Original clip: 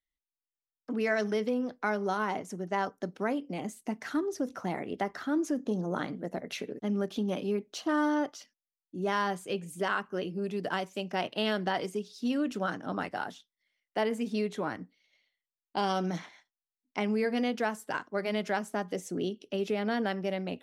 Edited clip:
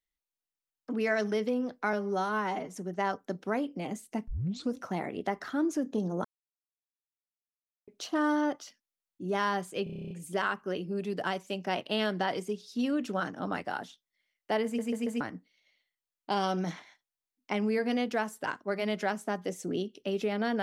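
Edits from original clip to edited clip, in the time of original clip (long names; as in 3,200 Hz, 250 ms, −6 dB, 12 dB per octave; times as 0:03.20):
0:01.93–0:02.46: time-stretch 1.5×
0:04.01: tape start 0.46 s
0:05.98–0:07.61: silence
0:09.57: stutter 0.03 s, 10 plays
0:14.11: stutter in place 0.14 s, 4 plays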